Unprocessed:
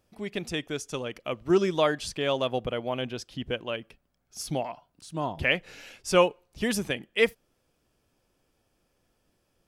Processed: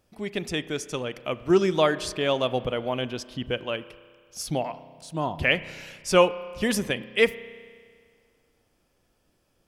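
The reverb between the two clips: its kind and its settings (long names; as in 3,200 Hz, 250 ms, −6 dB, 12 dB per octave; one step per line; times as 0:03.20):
spring reverb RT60 1.9 s, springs 32 ms, chirp 45 ms, DRR 15 dB
level +2.5 dB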